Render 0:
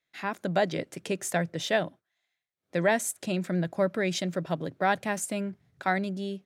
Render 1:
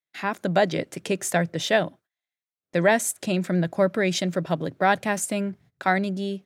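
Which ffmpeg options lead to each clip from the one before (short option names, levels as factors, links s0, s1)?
-af "agate=range=0.141:threshold=0.00178:ratio=16:detection=peak,volume=1.78"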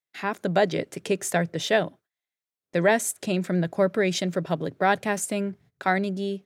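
-af "equalizer=f=420:w=6.3:g=5,volume=0.841"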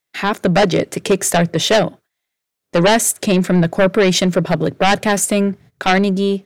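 -af "aeval=exprs='0.422*sin(PI/2*2.82*val(0)/0.422)':c=same"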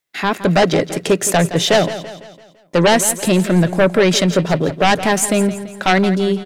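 -af "aecho=1:1:168|336|504|672|840:0.224|0.105|0.0495|0.0232|0.0109"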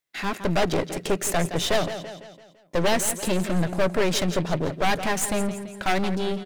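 -af "aeval=exprs='clip(val(0),-1,0.0596)':c=same,volume=0.501"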